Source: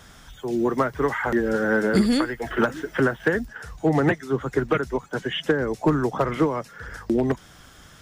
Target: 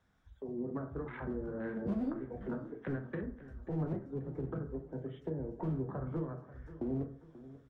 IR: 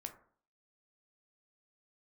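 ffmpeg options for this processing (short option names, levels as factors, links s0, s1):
-filter_complex "[0:a]afwtdn=0.0631,lowpass=f=1600:p=1,acrossover=split=230[s0][s1];[s0]asoftclip=type=hard:threshold=0.0447[s2];[s1]acompressor=threshold=0.0178:ratio=6[s3];[s2][s3]amix=inputs=2:normalize=0,aecho=1:1:558|1116|1674|2232:0.15|0.0673|0.0303|0.0136[s4];[1:a]atrim=start_sample=2205[s5];[s4][s5]afir=irnorm=-1:irlink=0,asetrate=45938,aresample=44100,volume=0.631"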